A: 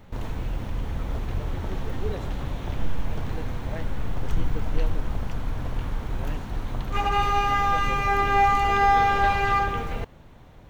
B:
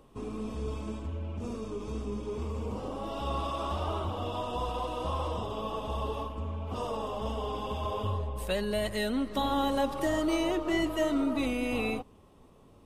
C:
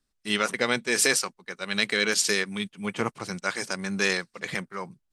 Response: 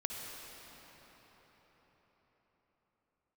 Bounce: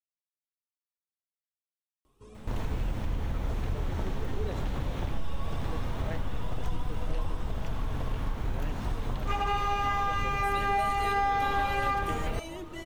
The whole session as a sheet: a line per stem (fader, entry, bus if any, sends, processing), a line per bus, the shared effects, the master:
+1.5 dB, 2.35 s, no send, downward compressor 3 to 1, threshold −29 dBFS, peak gain reduction 11 dB
−7.5 dB, 2.05 s, no send, high-shelf EQ 4,200 Hz +8.5 dB; flanger whose copies keep moving one way rising 1.9 Hz
muted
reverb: not used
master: no processing

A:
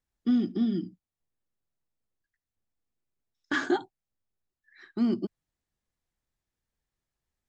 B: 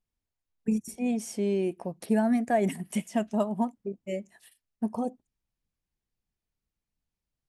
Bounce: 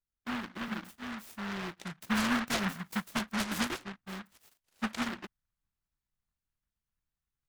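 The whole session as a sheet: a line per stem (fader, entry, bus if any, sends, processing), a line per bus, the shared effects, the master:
−12.5 dB, 0.00 s, no send, no processing
0:01.15 −9.5 dB → 0:01.84 −2 dB, 0.00 s, no send, phaser with its sweep stopped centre 1,200 Hz, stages 4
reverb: not used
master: short delay modulated by noise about 1,300 Hz, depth 0.47 ms

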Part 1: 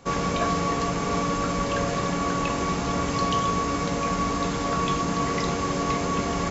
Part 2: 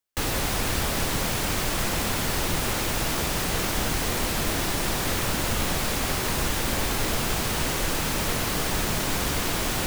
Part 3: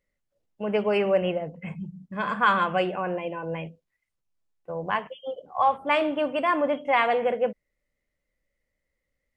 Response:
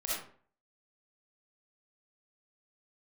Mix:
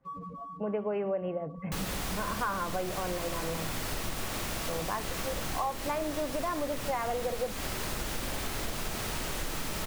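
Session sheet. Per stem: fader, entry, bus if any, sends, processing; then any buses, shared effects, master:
−12.5 dB, 0.00 s, no send, expanding power law on the bin magnitudes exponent 3.9; dead-zone distortion −55 dBFS; automatic ducking −10 dB, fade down 0.85 s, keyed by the third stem
−10.0 dB, 1.55 s, send −6 dB, no processing
−0.5 dB, 0.00 s, no send, low-pass filter 1,400 Hz 12 dB per octave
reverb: on, RT60 0.50 s, pre-delay 20 ms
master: downward compressor 4 to 1, threshold −30 dBFS, peak gain reduction 11 dB

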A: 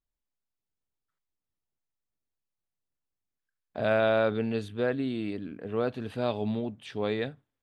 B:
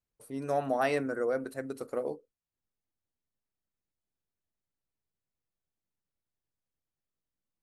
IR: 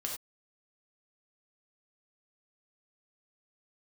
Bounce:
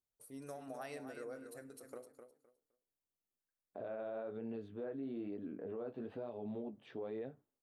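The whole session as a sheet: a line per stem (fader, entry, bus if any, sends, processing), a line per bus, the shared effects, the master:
+2.5 dB, 0.00 s, no send, no echo send, downward compressor 6 to 1, threshold −33 dBFS, peak gain reduction 11.5 dB; resonant band-pass 450 Hz, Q 0.9; flanger 1.1 Hz, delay 7.6 ms, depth 7.8 ms, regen −34%
−13.5 dB, 0.00 s, send −13.5 dB, echo send −7 dB, high-shelf EQ 5,200 Hz +11.5 dB; downward compressor, threshold −31 dBFS, peak gain reduction 8 dB; every ending faded ahead of time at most 160 dB per second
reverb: on, pre-delay 3 ms
echo: repeating echo 257 ms, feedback 20%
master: brickwall limiter −35.5 dBFS, peak gain reduction 8 dB

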